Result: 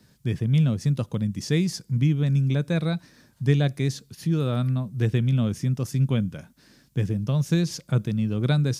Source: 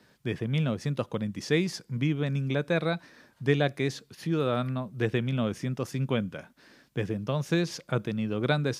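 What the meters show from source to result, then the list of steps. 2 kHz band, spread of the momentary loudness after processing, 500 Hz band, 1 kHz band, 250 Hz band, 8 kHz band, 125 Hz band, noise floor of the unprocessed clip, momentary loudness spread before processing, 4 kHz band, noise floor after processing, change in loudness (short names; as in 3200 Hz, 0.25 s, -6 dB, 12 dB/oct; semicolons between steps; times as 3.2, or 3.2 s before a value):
-3.5 dB, 7 LU, -2.5 dB, -4.0 dB, +4.5 dB, +5.5 dB, +8.5 dB, -65 dBFS, 6 LU, +1.0 dB, -61 dBFS, +5.0 dB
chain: tone controls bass +14 dB, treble +11 dB; gain -4 dB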